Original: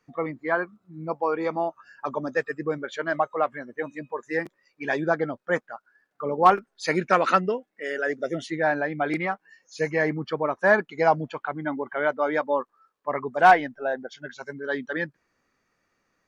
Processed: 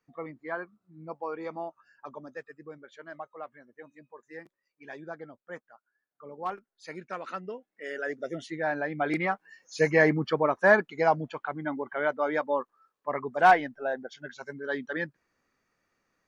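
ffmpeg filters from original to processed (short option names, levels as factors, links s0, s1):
-af "volume=3.16,afade=t=out:st=1.64:d=0.86:silence=0.446684,afade=t=in:st=7.35:d=0.53:silence=0.298538,afade=t=in:st=8.66:d=1.33:silence=0.334965,afade=t=out:st=9.99:d=1.07:silence=0.473151"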